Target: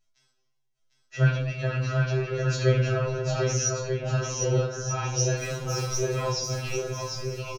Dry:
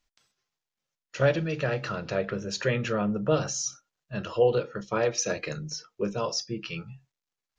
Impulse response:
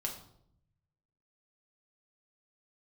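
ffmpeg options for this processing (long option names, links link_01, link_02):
-filter_complex "[0:a]asettb=1/sr,asplit=3[link_01][link_02][link_03];[link_01]atrim=end=5.384[link_04];[link_02]atrim=start=5.38:end=6.16,asetpts=PTS-STARTPTS,afade=type=in:duration=0.004:curve=qsin,afade=type=out:start_time=0.776:duration=0.004:curve=qsin,aeval=exprs='val(0)+0.5*0.0224*sgn(val(0))':channel_layout=same[link_05];[link_03]atrim=start=6.156[link_06];[link_04][link_05]acrossfade=duration=0.004:curve1=hsin:curve2=qsin[link_07];[link_07][link_06]acrossfade=duration=0.004:curve1=qsin:curve2=hsin,bass=frequency=250:gain=-1,treble=frequency=4000:gain=12[link_08];[1:a]atrim=start_sample=2205[link_09];[link_08][link_09]afir=irnorm=-1:irlink=0,asplit=2[link_10][link_11];[link_11]acontrast=88,volume=-1dB[link_12];[link_10][link_12]amix=inputs=2:normalize=0,aemphasis=mode=reproduction:type=75kf,aecho=1:1:750|1238|1554|1760|1894:0.631|0.398|0.251|0.158|0.1,afftfilt=real='re*2.45*eq(mod(b,6),0)':imag='im*2.45*eq(mod(b,6),0)':win_size=2048:overlap=0.75,volume=-8dB"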